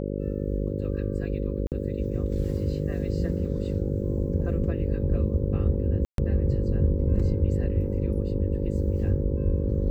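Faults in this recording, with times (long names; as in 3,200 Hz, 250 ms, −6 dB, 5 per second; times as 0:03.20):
mains buzz 50 Hz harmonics 11 −30 dBFS
0:01.67–0:01.72: drop-out 48 ms
0:06.05–0:06.18: drop-out 132 ms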